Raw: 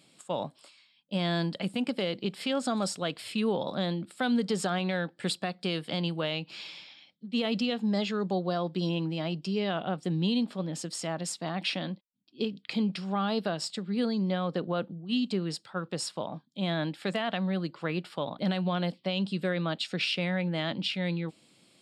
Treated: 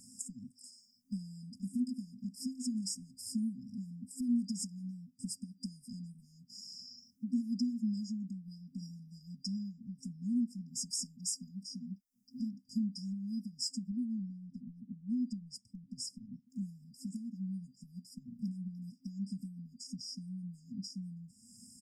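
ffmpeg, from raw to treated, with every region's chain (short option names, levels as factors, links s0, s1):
-filter_complex "[0:a]asettb=1/sr,asplit=3[s0][s1][s2];[s0]atrim=end=13.914[s3];[s1]atrim=start=13.91:end=16.5,asetpts=PTS-STARTPTS,afade=t=in:d=0.004:c=qsin,afade=t=out:st=2.586:d=0.004:c=qsin,highshelf=f=2600:g=-10.5,acompressor=threshold=0.02:ratio=2.5:attack=3.2:release=140:knee=1:detection=peak,tremolo=f=9:d=0.29[s4];[s2]atrim=start=16.496[s5];[s3][s4]acrossfade=d=0.004:c1=hsin:c2=qsin[s6];[s6][s5]acrossfade=d=0.004:c1=qsin:c2=hsin,acompressor=threshold=0.00398:ratio=2.5,aecho=1:1:3.2:0.87,afftfilt=real='re*(1-between(b*sr/4096,260,4800))':imag='im*(1-between(b*sr/4096,260,4800))':win_size=4096:overlap=0.75,volume=2.82"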